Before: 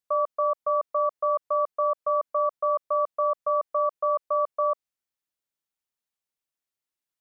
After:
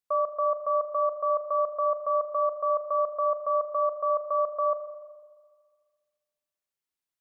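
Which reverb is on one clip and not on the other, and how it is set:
spring reverb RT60 1.7 s, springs 35/41 ms, chirp 55 ms, DRR 8.5 dB
level −2 dB

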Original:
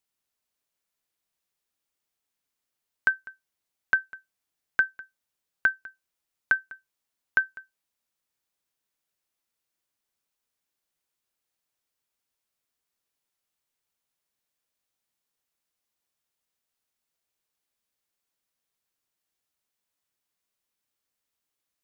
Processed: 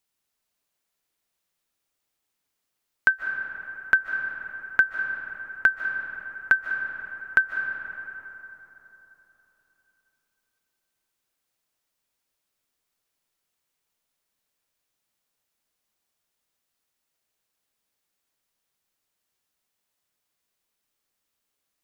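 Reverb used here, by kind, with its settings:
comb and all-pass reverb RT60 3.8 s, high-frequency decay 0.45×, pre-delay 110 ms, DRR 5 dB
level +3.5 dB

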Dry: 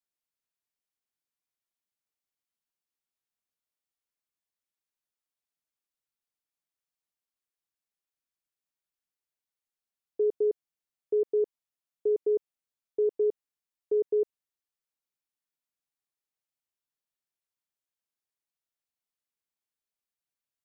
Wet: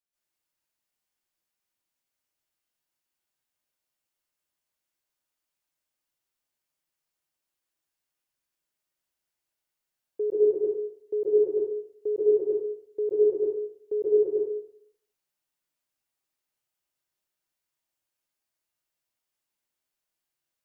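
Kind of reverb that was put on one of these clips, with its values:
dense smooth reverb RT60 0.67 s, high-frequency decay 0.85×, pre-delay 120 ms, DRR −9 dB
level −2.5 dB

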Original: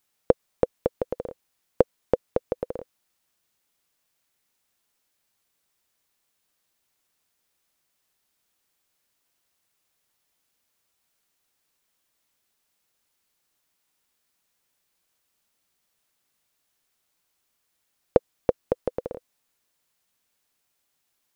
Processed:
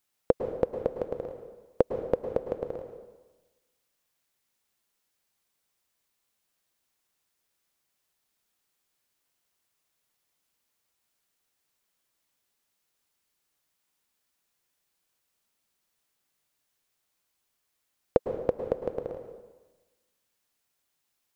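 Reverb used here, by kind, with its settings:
dense smooth reverb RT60 1.2 s, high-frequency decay 0.85×, pre-delay 95 ms, DRR 6.5 dB
level −4 dB

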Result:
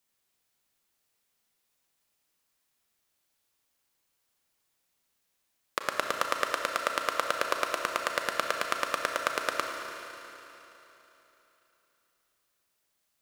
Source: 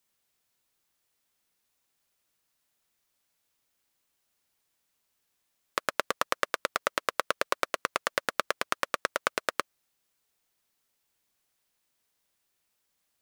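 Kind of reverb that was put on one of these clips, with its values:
four-comb reverb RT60 3.4 s, combs from 28 ms, DRR 2.5 dB
level −1.5 dB

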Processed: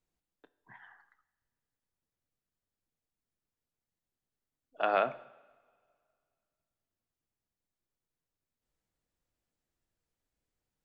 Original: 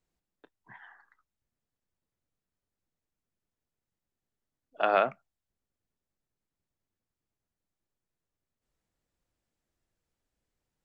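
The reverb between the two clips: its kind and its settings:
coupled-rooms reverb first 0.82 s, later 2.3 s, from −17 dB, DRR 14 dB
level −3.5 dB

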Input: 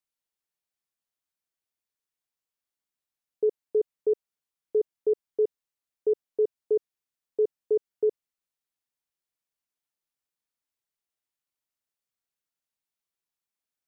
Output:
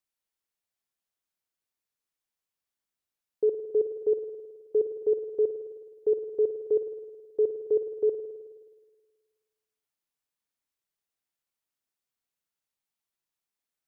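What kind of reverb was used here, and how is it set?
spring reverb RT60 1.5 s, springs 53 ms, chirp 70 ms, DRR 8 dB

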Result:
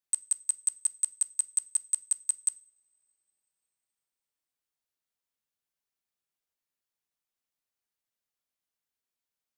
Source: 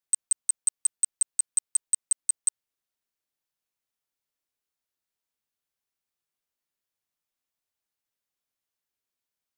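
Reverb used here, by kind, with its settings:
coupled-rooms reverb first 0.38 s, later 3.1 s, from −28 dB, DRR 16 dB
level −3 dB

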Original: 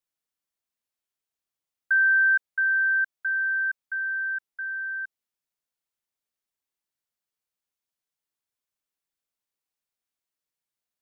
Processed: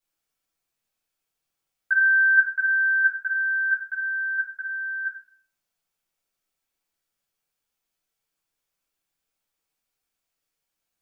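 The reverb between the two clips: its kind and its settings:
rectangular room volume 62 cubic metres, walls mixed, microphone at 1.5 metres

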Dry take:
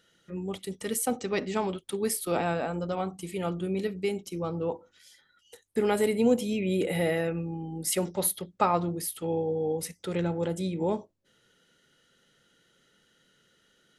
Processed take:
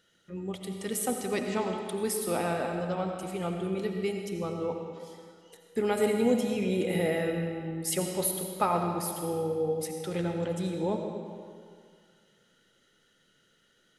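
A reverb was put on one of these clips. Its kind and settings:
comb and all-pass reverb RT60 2.1 s, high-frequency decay 0.85×, pre-delay 45 ms, DRR 3.5 dB
level −2.5 dB

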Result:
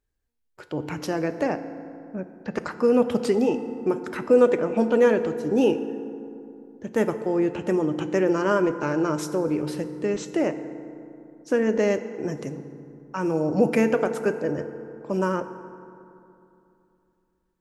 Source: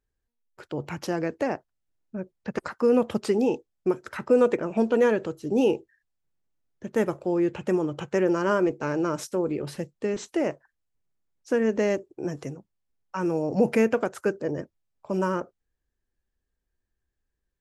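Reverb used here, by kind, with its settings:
feedback delay network reverb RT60 2.8 s, low-frequency decay 1.2×, high-frequency decay 0.45×, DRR 9.5 dB
level +1.5 dB

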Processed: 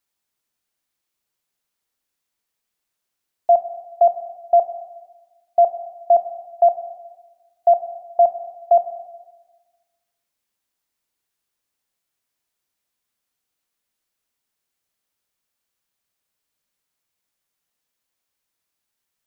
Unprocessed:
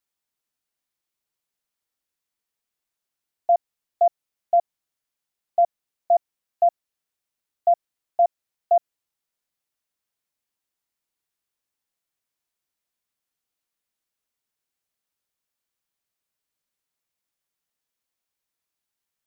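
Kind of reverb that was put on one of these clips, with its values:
four-comb reverb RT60 1.3 s, combs from 31 ms, DRR 9.5 dB
level +4.5 dB

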